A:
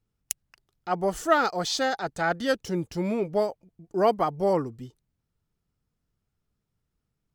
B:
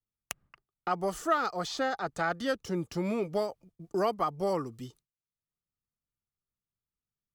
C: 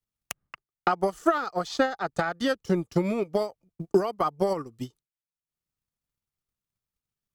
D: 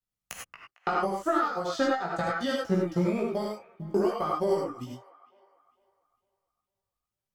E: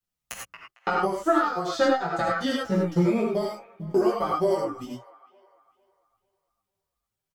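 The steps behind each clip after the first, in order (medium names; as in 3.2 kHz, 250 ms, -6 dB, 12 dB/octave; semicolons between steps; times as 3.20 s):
peaking EQ 1.2 kHz +8.5 dB 0.21 oct; expander -48 dBFS; three bands compressed up and down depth 70%; trim -6 dB
peak limiter -22.5 dBFS, peak gain reduction 11 dB; transient shaper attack +11 dB, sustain -10 dB; trim +2.5 dB
chorus 0.38 Hz, delay 16 ms, depth 3.4 ms; feedback echo behind a band-pass 452 ms, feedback 34%, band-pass 1.4 kHz, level -18 dB; gated-style reverb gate 120 ms rising, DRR -1 dB; trim -2 dB
endless flanger 7.3 ms -2.1 Hz; trim +6.5 dB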